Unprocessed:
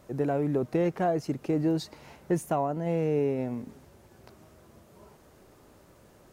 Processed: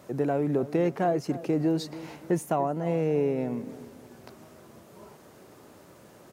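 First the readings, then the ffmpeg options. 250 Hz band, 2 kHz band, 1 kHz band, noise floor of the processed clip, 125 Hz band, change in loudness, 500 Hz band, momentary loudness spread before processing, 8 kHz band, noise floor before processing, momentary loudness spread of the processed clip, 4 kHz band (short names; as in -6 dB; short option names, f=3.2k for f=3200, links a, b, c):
+1.0 dB, +1.5 dB, +1.5 dB, -53 dBFS, 0.0 dB, +1.0 dB, +1.5 dB, 7 LU, +1.5 dB, -57 dBFS, 13 LU, +2.0 dB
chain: -filter_complex "[0:a]highpass=120,asplit=2[a][b];[b]acompressor=threshold=-40dB:ratio=6,volume=-2dB[c];[a][c]amix=inputs=2:normalize=0,asplit=2[d][e];[e]adelay=291,lowpass=f=2k:p=1,volume=-15.5dB,asplit=2[f][g];[g]adelay=291,lowpass=f=2k:p=1,volume=0.39,asplit=2[h][i];[i]adelay=291,lowpass=f=2k:p=1,volume=0.39[j];[d][f][h][j]amix=inputs=4:normalize=0"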